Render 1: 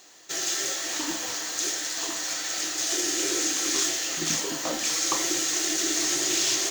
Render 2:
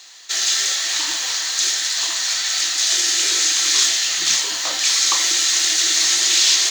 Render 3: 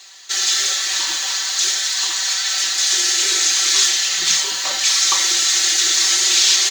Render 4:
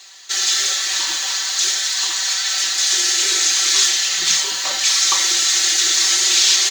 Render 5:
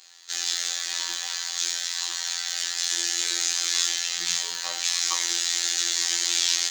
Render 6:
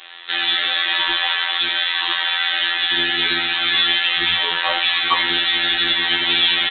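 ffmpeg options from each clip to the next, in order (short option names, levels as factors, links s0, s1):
-af "equalizer=f=125:t=o:w=1:g=-10,equalizer=f=250:t=o:w=1:g=-10,equalizer=f=500:t=o:w=1:g=-4,equalizer=f=1000:t=o:w=1:g=4,equalizer=f=2000:t=o:w=1:g=6,equalizer=f=4000:t=o:w=1:g=12,equalizer=f=8000:t=o:w=1:g=5"
-af "aecho=1:1:5.2:0.78,volume=0.891"
-af anull
-af "afftfilt=real='hypot(re,im)*cos(PI*b)':imag='0':win_size=2048:overlap=0.75,volume=0.501"
-af "apsyclip=5.62,aresample=8000,aresample=44100,volume=1.58"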